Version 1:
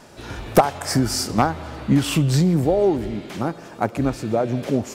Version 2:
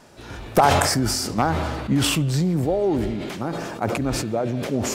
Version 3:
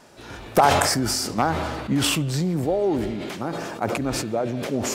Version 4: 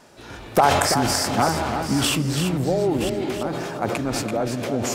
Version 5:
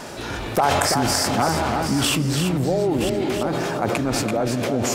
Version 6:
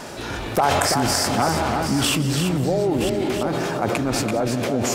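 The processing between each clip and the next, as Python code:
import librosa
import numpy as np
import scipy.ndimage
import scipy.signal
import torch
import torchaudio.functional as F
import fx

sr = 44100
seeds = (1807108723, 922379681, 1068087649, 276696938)

y1 = fx.sustainer(x, sr, db_per_s=29.0)
y1 = y1 * 10.0 ** (-4.0 / 20.0)
y2 = fx.low_shelf(y1, sr, hz=140.0, db=-7.0)
y3 = fx.reverse_delay(y2, sr, ms=516, wet_db=-9)
y3 = y3 + 10.0 ** (-7.5 / 20.0) * np.pad(y3, (int(334 * sr / 1000.0), 0))[:len(y3)]
y4 = fx.env_flatten(y3, sr, amount_pct=50)
y4 = y4 * 10.0 ** (-3.5 / 20.0)
y5 = y4 + 10.0 ** (-17.5 / 20.0) * np.pad(y4, (int(180 * sr / 1000.0), 0))[:len(y4)]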